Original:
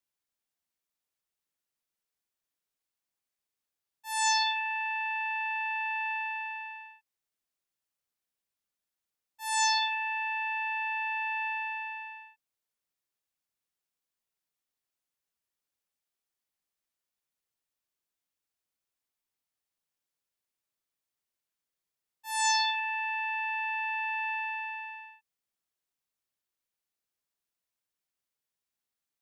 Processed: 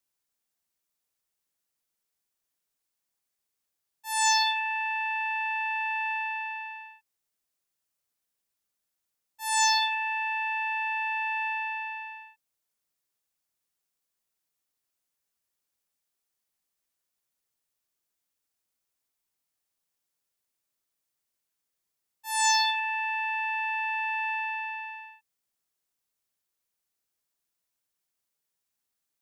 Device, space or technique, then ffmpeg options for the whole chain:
exciter from parts: -filter_complex "[0:a]asplit=2[s0][s1];[s1]highpass=4200,asoftclip=type=tanh:threshold=0.015,volume=0.473[s2];[s0][s2]amix=inputs=2:normalize=0,volume=1.41"

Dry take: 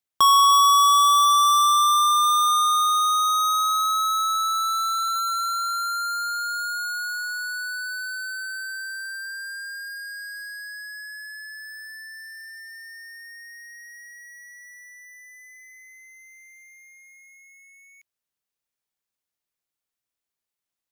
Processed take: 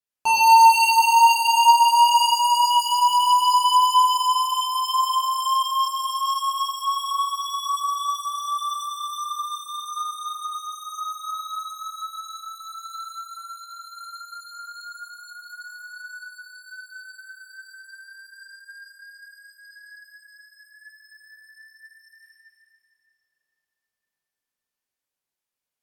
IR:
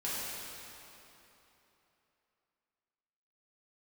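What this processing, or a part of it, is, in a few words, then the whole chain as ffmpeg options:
slowed and reverbed: -filter_complex "[0:a]asetrate=35721,aresample=44100[s0];[1:a]atrim=start_sample=2205[s1];[s0][s1]afir=irnorm=-1:irlink=0,volume=0.562"

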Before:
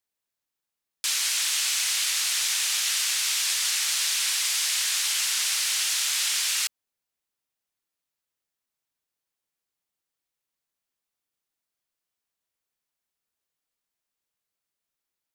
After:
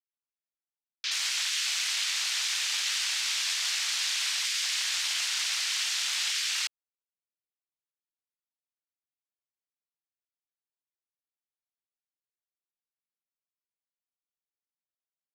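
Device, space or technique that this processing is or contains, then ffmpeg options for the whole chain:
over-cleaned archive recording: -af "highpass=150,lowpass=6300,afwtdn=0.0141,volume=0.841"

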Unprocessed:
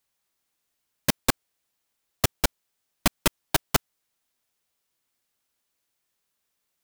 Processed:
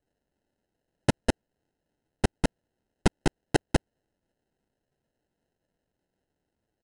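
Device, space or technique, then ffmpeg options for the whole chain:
crushed at another speed: -af "asetrate=88200,aresample=44100,acrusher=samples=19:mix=1:aa=0.000001,asetrate=22050,aresample=44100"

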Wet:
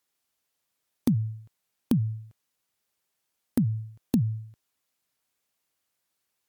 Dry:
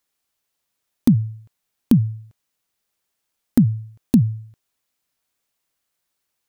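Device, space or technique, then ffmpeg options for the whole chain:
podcast mastering chain: -af "highpass=61,acompressor=threshold=0.178:ratio=3,alimiter=limit=0.335:level=0:latency=1:release=215,volume=0.794" -ar 48000 -c:a libmp3lame -b:a 96k

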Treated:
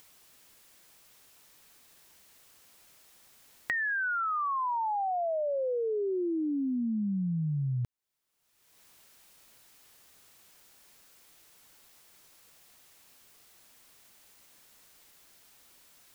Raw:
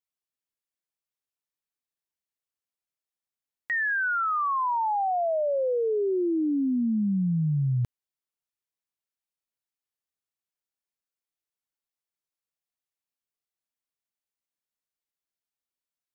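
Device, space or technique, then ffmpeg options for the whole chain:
upward and downward compression: -af "acompressor=mode=upward:threshold=0.00398:ratio=2.5,acompressor=threshold=0.00891:ratio=4,volume=2.66"

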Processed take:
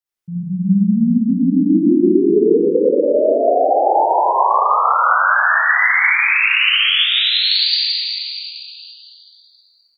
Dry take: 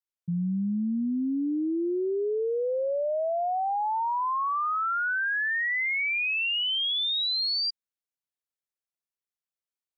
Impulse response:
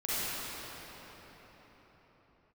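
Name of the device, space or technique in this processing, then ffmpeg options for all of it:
cave: -filter_complex "[0:a]aecho=1:1:206:0.335[s0];[1:a]atrim=start_sample=2205[s1];[s0][s1]afir=irnorm=-1:irlink=0,volume=1.5"

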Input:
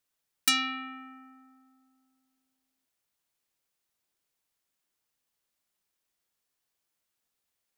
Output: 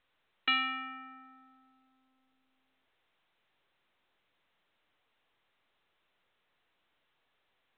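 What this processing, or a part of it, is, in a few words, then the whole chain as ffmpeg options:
telephone: -af "highpass=360,lowpass=3500" -ar 8000 -c:a pcm_mulaw

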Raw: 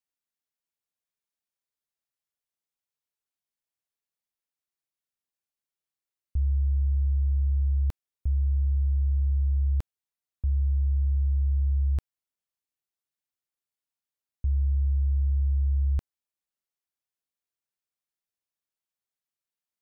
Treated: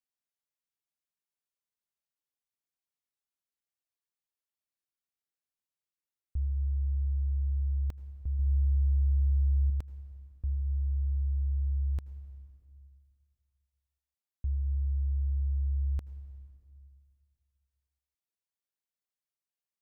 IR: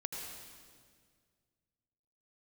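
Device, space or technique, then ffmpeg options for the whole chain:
compressed reverb return: -filter_complex "[0:a]asplit=2[s0][s1];[1:a]atrim=start_sample=2205[s2];[s1][s2]afir=irnorm=-1:irlink=0,acompressor=threshold=0.0631:ratio=6,volume=0.355[s3];[s0][s3]amix=inputs=2:normalize=0,asettb=1/sr,asplit=3[s4][s5][s6];[s4]atrim=end=8.394[s7];[s5]atrim=start=8.39:end=9.7,asetpts=PTS-STARTPTS,afade=t=in:d=0.004:c=qsin,afade=t=out:st=1.306:d=0.004:c=qsin,bass=f=250:g=4,treble=f=4000:g=10[s8];[s6]atrim=start=9.696[s9];[s7][s8]acrossfade=d=0.004:c1=hsin:c2=qsin[s10];[s10][s9]acrossfade=d=0.004:c1=qsin:c2=hsin,volume=0.422"

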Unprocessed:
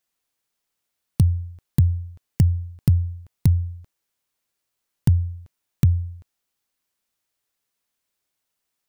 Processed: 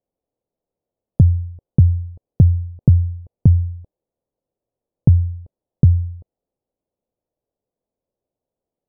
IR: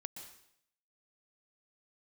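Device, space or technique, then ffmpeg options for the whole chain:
under water: -af "lowpass=f=700:w=0.5412,lowpass=f=700:w=1.3066,equalizer=f=520:t=o:w=0.59:g=5.5,volume=1.88"

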